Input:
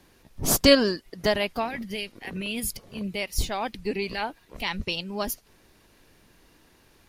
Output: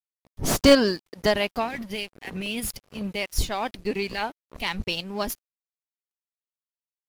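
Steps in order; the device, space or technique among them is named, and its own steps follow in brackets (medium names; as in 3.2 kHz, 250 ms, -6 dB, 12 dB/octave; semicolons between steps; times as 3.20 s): early transistor amplifier (crossover distortion -46.5 dBFS; slew-rate limiter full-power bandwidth 330 Hz); trim +2 dB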